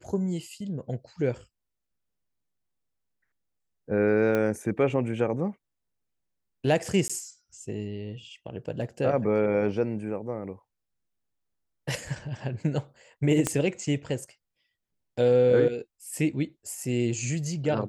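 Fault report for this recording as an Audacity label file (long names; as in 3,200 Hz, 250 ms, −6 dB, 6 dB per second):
4.350000	4.350000	click −15 dBFS
7.080000	7.100000	drop-out 16 ms
13.470000	13.470000	click −11 dBFS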